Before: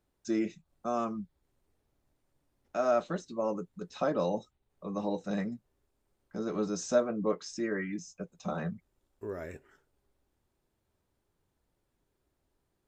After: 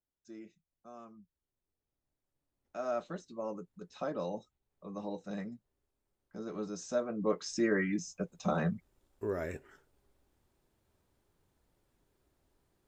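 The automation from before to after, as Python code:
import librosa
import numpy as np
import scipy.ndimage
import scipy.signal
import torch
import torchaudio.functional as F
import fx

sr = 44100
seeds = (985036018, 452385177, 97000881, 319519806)

y = fx.gain(x, sr, db=fx.line((1.09, -19.0), (3.03, -7.0), (6.94, -7.0), (7.55, 3.5)))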